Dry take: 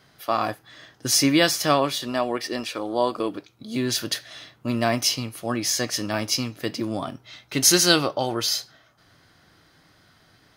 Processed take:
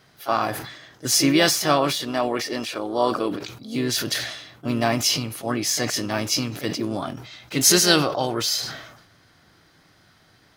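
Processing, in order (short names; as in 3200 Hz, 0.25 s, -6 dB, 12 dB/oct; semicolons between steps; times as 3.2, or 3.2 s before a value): harmoniser +3 st -10 dB; sustainer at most 62 dB/s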